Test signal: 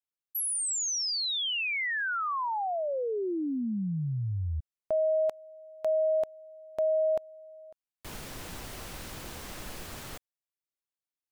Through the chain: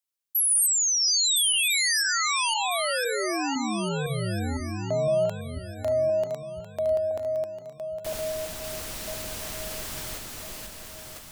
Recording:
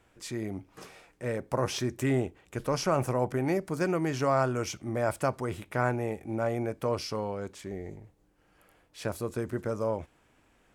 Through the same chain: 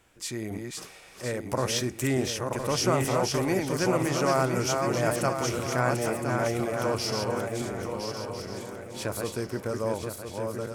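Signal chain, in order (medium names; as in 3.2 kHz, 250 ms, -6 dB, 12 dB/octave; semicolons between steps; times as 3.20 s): chunks repeated in reverse 508 ms, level -3.5 dB; treble shelf 2.9 kHz +8.5 dB; shuffle delay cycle 1350 ms, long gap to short 3:1, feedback 31%, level -7.5 dB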